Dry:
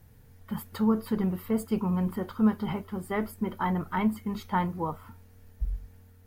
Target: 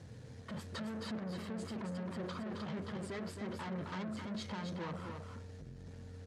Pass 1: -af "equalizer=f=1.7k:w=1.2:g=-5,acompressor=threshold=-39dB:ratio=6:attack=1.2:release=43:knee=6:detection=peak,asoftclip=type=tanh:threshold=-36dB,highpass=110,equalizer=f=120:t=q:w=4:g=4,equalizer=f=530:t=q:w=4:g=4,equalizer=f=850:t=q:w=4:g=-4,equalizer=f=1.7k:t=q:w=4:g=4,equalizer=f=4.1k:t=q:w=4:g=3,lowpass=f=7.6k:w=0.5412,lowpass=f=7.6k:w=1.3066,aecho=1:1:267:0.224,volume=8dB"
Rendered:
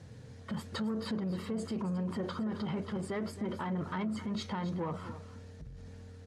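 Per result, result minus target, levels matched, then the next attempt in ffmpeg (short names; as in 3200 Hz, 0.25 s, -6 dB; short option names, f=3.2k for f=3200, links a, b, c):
soft clip: distortion -13 dB; echo-to-direct -7.5 dB
-af "equalizer=f=1.7k:w=1.2:g=-5,acompressor=threshold=-39dB:ratio=6:attack=1.2:release=43:knee=6:detection=peak,asoftclip=type=tanh:threshold=-48dB,highpass=110,equalizer=f=120:t=q:w=4:g=4,equalizer=f=530:t=q:w=4:g=4,equalizer=f=850:t=q:w=4:g=-4,equalizer=f=1.7k:t=q:w=4:g=4,equalizer=f=4.1k:t=q:w=4:g=3,lowpass=f=7.6k:w=0.5412,lowpass=f=7.6k:w=1.3066,aecho=1:1:267:0.224,volume=8dB"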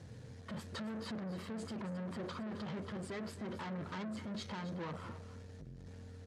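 echo-to-direct -7.5 dB
-af "equalizer=f=1.7k:w=1.2:g=-5,acompressor=threshold=-39dB:ratio=6:attack=1.2:release=43:knee=6:detection=peak,asoftclip=type=tanh:threshold=-48dB,highpass=110,equalizer=f=120:t=q:w=4:g=4,equalizer=f=530:t=q:w=4:g=4,equalizer=f=850:t=q:w=4:g=-4,equalizer=f=1.7k:t=q:w=4:g=4,equalizer=f=4.1k:t=q:w=4:g=3,lowpass=f=7.6k:w=0.5412,lowpass=f=7.6k:w=1.3066,aecho=1:1:267:0.531,volume=8dB"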